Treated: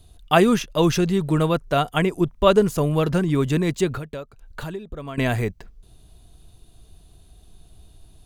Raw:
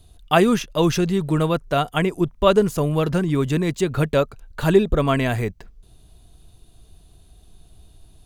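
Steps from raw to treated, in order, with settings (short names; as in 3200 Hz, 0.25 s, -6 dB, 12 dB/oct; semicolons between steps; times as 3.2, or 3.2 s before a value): 3.96–5.18 compressor 8:1, threshold -30 dBFS, peak gain reduction 20 dB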